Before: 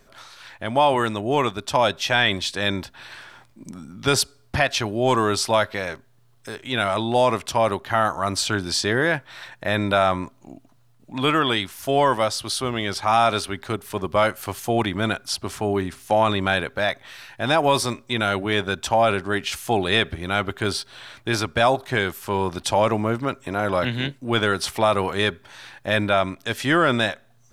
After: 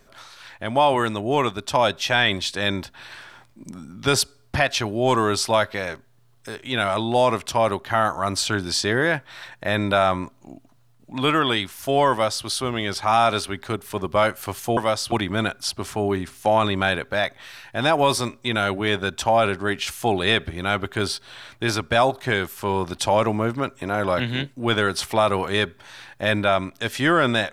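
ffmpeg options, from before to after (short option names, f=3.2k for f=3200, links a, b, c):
-filter_complex "[0:a]asplit=3[a][b][c];[a]atrim=end=14.772[d];[b]atrim=start=12.108:end=12.462[e];[c]atrim=start=14.768[f];[d][e]acrossfade=d=0.004:c1=hsin:c2=hsin[g];[g][f]acrossfade=d=0.004:c1=hsin:c2=hsin"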